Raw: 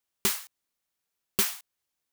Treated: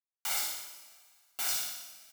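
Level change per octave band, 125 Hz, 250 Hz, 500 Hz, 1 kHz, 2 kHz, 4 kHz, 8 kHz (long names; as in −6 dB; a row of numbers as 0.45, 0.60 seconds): below −15 dB, −21.0 dB, −12.5 dB, −1.0 dB, −3.0 dB, −2.0 dB, −2.0 dB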